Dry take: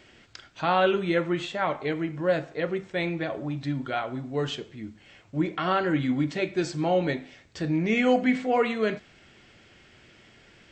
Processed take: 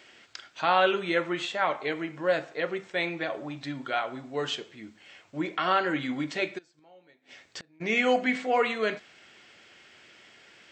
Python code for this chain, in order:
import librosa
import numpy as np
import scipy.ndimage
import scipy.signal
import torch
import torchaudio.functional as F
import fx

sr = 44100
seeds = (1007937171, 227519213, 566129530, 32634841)

y = fx.highpass(x, sr, hz=650.0, slope=6)
y = fx.gate_flip(y, sr, shuts_db=-30.0, range_db=-30, at=(6.57, 7.8), fade=0.02)
y = y * 10.0 ** (2.5 / 20.0)